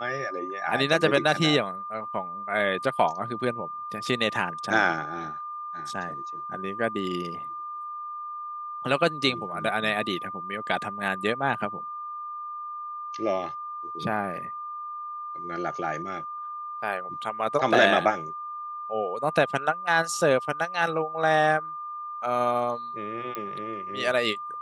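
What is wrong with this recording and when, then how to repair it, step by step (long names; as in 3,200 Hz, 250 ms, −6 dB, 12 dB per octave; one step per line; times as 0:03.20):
whistle 1,200 Hz −33 dBFS
0:23.35: click −18 dBFS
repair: click removal
notch filter 1,200 Hz, Q 30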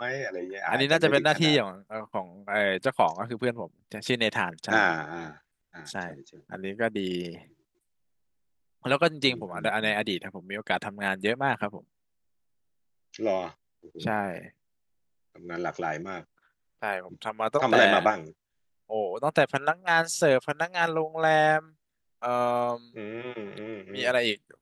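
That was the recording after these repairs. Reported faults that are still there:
none of them is left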